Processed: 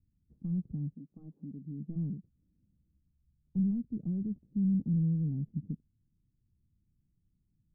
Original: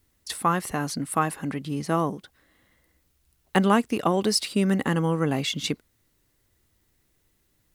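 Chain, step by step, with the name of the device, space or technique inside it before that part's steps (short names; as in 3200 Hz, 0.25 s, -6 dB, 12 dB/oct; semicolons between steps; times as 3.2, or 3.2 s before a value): 0.93–1.95 HPF 440 Hz -> 180 Hz 12 dB/oct; overdriven synthesiser ladder filter (soft clip -23.5 dBFS, distortion -8 dB; ladder low-pass 220 Hz, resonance 40%); gain +4 dB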